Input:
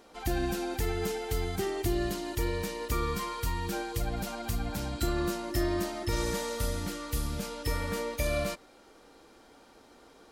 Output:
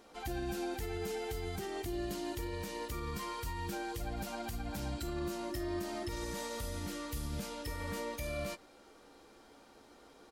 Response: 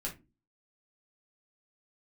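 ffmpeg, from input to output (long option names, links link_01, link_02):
-filter_complex "[0:a]alimiter=level_in=3dB:limit=-24dB:level=0:latency=1:release=118,volume=-3dB,asplit=2[link_01][link_02];[link_02]adelay=14,volume=-11dB[link_03];[link_01][link_03]amix=inputs=2:normalize=0,volume=-3dB"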